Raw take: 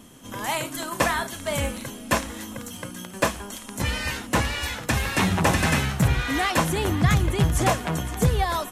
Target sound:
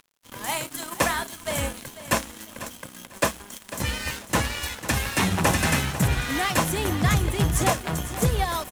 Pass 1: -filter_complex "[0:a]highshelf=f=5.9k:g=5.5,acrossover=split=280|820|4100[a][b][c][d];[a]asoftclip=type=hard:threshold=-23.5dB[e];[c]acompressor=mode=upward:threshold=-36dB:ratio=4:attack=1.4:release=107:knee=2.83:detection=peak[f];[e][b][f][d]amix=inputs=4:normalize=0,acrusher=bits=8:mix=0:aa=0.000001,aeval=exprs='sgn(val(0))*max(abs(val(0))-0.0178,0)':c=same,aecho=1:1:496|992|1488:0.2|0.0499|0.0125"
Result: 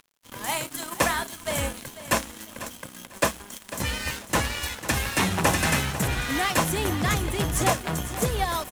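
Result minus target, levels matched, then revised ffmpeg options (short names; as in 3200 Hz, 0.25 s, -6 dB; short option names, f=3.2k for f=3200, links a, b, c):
hard clip: distortion +11 dB
-filter_complex "[0:a]highshelf=f=5.9k:g=5.5,acrossover=split=280|820|4100[a][b][c][d];[a]asoftclip=type=hard:threshold=-16dB[e];[c]acompressor=mode=upward:threshold=-36dB:ratio=4:attack=1.4:release=107:knee=2.83:detection=peak[f];[e][b][f][d]amix=inputs=4:normalize=0,acrusher=bits=8:mix=0:aa=0.000001,aeval=exprs='sgn(val(0))*max(abs(val(0))-0.0178,0)':c=same,aecho=1:1:496|992|1488:0.2|0.0499|0.0125"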